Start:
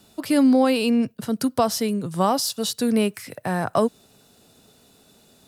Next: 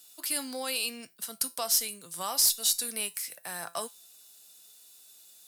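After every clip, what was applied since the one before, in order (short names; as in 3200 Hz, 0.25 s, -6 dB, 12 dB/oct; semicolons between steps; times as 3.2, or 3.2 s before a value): differentiator; in parallel at -5 dB: one-sided clip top -26.5 dBFS; on the sum: resonator 170 Hz, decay 0.25 s, harmonics all, mix 60%; gain +6 dB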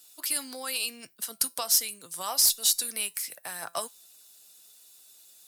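harmonic-percussive split harmonic -8 dB; gain +3.5 dB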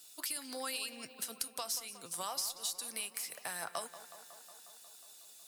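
bell 13000 Hz -5 dB 0.41 oct; compressor 6:1, threshold -36 dBFS, peak gain reduction 16 dB; tape echo 0.182 s, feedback 77%, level -12.5 dB, low-pass 3700 Hz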